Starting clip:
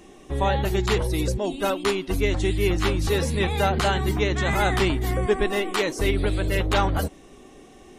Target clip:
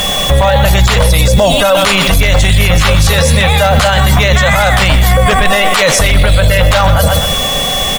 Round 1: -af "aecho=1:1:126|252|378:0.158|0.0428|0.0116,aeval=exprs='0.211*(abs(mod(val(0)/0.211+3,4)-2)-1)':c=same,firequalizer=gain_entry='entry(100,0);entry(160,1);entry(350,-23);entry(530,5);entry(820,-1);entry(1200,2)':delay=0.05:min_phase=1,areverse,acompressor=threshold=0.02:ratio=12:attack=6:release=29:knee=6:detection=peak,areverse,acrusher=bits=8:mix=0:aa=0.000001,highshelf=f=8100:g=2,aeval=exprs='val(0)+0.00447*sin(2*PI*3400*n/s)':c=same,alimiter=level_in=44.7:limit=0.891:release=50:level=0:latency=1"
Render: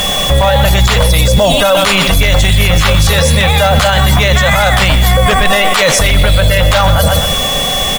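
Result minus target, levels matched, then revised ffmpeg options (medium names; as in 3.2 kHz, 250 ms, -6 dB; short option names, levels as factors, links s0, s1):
compression: peak gain reduction +7.5 dB
-af "aecho=1:1:126|252|378:0.158|0.0428|0.0116,aeval=exprs='0.211*(abs(mod(val(0)/0.211+3,4)-2)-1)':c=same,firequalizer=gain_entry='entry(100,0);entry(160,1);entry(350,-23);entry(530,5);entry(820,-1);entry(1200,2)':delay=0.05:min_phase=1,areverse,acompressor=threshold=0.0501:ratio=12:attack=6:release=29:knee=6:detection=peak,areverse,acrusher=bits=8:mix=0:aa=0.000001,highshelf=f=8100:g=2,aeval=exprs='val(0)+0.00447*sin(2*PI*3400*n/s)':c=same,alimiter=level_in=44.7:limit=0.891:release=50:level=0:latency=1"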